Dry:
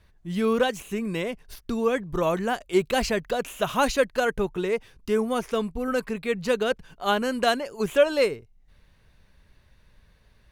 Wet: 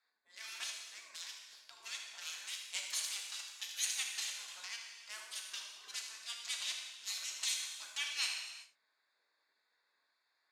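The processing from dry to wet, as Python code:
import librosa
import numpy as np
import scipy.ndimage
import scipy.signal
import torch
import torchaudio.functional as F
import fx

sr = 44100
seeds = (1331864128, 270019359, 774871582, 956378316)

y = fx.wiener(x, sr, points=15)
y = fx.spec_gate(y, sr, threshold_db=-25, keep='weak')
y = fx.bandpass_q(y, sr, hz=6000.0, q=1.2)
y = y + 10.0 ** (-13.5 / 20.0) * np.pad(y, (int(76 * sr / 1000.0), 0))[:len(y)]
y = fx.rev_gated(y, sr, seeds[0], gate_ms=420, shape='falling', drr_db=0.5)
y = fx.band_squash(y, sr, depth_pct=40, at=(4.48, 5.27))
y = y * 10.0 ** (5.0 / 20.0)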